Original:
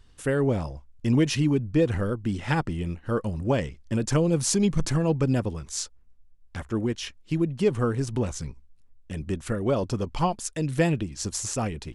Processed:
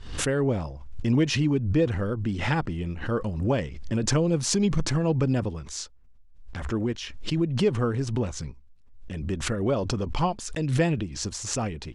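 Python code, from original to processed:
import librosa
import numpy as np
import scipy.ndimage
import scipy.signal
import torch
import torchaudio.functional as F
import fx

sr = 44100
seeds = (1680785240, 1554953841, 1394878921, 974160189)

y = scipy.signal.sosfilt(scipy.signal.butter(2, 6200.0, 'lowpass', fs=sr, output='sos'), x)
y = fx.pre_swell(y, sr, db_per_s=63.0)
y = y * librosa.db_to_amplitude(-1.0)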